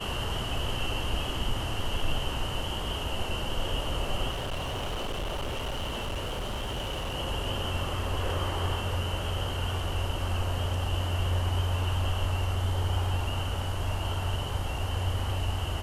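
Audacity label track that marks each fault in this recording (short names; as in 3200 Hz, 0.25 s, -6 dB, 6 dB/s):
4.300000	7.150000	clipped -29 dBFS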